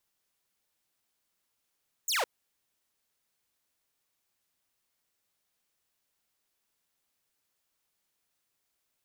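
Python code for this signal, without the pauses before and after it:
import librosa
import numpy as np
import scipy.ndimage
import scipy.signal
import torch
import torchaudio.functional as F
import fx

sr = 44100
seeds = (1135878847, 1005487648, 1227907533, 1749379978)

y = fx.laser_zap(sr, level_db=-23.5, start_hz=8000.0, end_hz=430.0, length_s=0.16, wave='saw')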